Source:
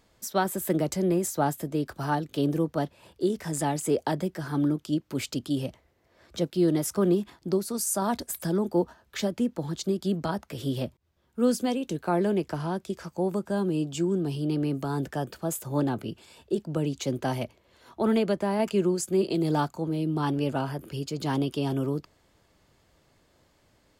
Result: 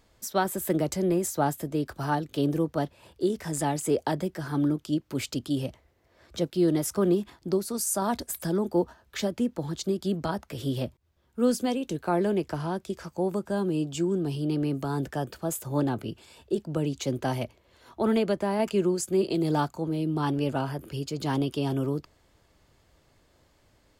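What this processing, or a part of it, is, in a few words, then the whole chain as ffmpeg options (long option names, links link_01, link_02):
low shelf boost with a cut just above: -af "lowshelf=frequency=89:gain=5.5,equalizer=frequency=180:width_type=o:width=0.77:gain=-2.5"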